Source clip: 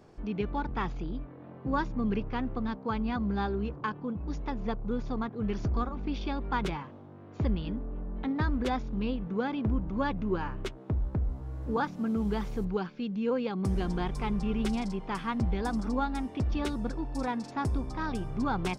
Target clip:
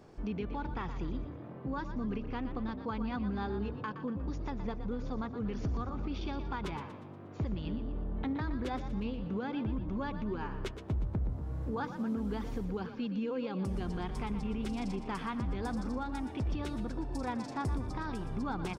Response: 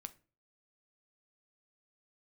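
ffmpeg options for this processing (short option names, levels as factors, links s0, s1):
-filter_complex "[0:a]alimiter=level_in=1.58:limit=0.0631:level=0:latency=1:release=218,volume=0.631,asplit=6[s0][s1][s2][s3][s4][s5];[s1]adelay=119,afreqshift=34,volume=0.299[s6];[s2]adelay=238,afreqshift=68,volume=0.14[s7];[s3]adelay=357,afreqshift=102,volume=0.0661[s8];[s4]adelay=476,afreqshift=136,volume=0.0309[s9];[s5]adelay=595,afreqshift=170,volume=0.0146[s10];[s0][s6][s7][s8][s9][s10]amix=inputs=6:normalize=0"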